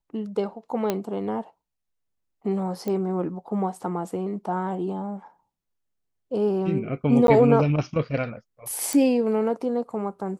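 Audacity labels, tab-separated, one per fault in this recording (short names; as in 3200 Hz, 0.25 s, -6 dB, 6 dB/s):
0.900000	0.900000	pop -10 dBFS
2.880000	2.880000	pop -17 dBFS
7.270000	7.280000	gap 12 ms
8.930000	8.930000	pop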